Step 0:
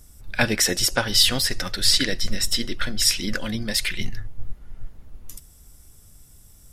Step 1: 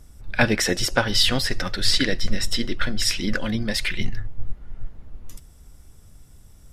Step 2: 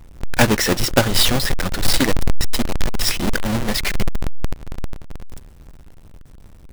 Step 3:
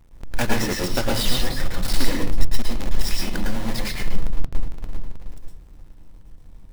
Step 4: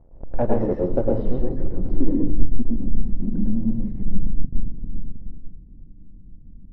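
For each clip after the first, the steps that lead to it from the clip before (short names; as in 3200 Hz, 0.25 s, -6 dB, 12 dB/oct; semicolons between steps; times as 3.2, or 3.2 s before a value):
LPF 2800 Hz 6 dB/oct; gain +3 dB
half-waves squared off
reverb RT60 0.35 s, pre-delay 0.104 s, DRR -1 dB; gain -10.5 dB
low-pass sweep 620 Hz -> 230 Hz, 0.37–3.04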